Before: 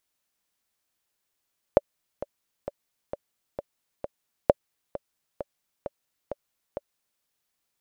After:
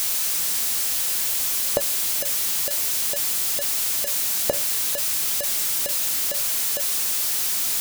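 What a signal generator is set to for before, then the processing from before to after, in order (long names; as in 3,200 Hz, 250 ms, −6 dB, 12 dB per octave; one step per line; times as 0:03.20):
click track 132 BPM, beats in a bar 6, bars 2, 573 Hz, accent 16 dB −2.5 dBFS
converter with a step at zero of −22.5 dBFS
flanger 0.55 Hz, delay 8 ms, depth 7.1 ms, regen −70%
high-shelf EQ 3,000 Hz +11.5 dB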